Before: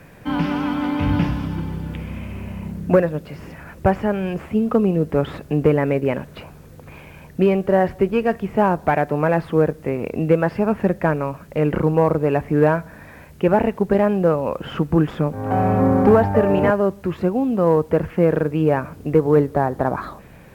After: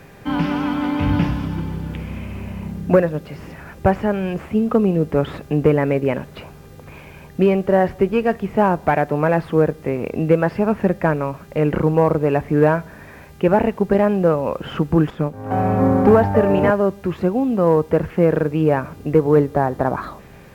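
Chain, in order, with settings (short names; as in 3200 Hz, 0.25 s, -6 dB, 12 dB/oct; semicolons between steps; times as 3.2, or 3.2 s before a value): buzz 400 Hz, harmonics 19, -53 dBFS -6 dB/oct; 15.1–16.06 upward expander 1.5:1, over -28 dBFS; gain +1 dB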